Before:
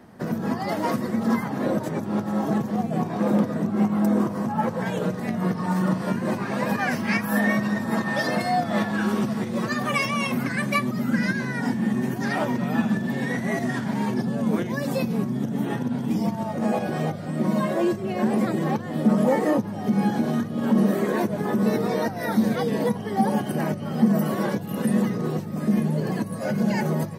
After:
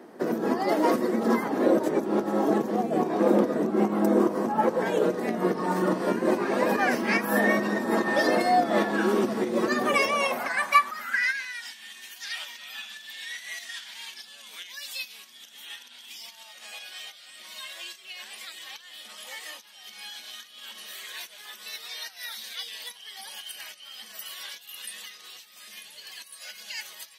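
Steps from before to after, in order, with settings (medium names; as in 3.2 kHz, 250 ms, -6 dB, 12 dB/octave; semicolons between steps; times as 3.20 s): high-pass sweep 350 Hz -> 3.2 kHz, 9.89–11.63 s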